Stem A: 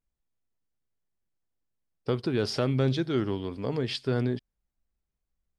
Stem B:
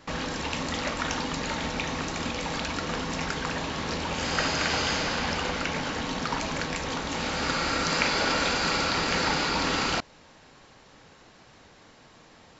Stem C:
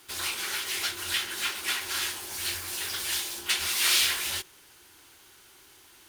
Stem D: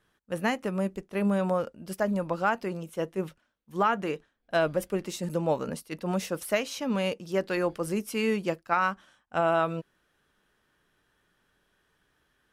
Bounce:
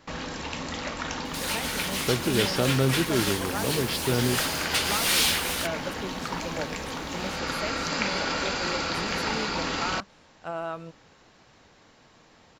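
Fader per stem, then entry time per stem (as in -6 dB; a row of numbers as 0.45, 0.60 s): +1.5, -3.0, 0.0, -8.5 dB; 0.00, 0.00, 1.25, 1.10 s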